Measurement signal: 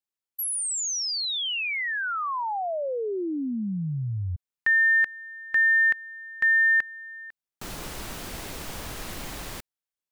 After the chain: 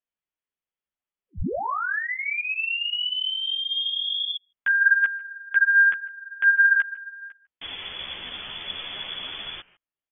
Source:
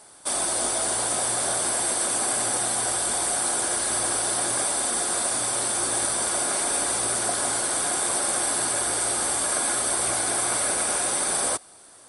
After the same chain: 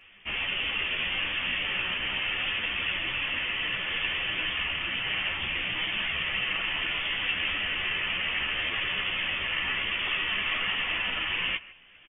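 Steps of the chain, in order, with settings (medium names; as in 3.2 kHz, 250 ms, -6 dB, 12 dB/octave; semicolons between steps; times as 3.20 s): speakerphone echo 150 ms, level -19 dB; frequency inversion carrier 3.4 kHz; chorus voices 4, 0.71 Hz, delay 13 ms, depth 3.2 ms; trim +4 dB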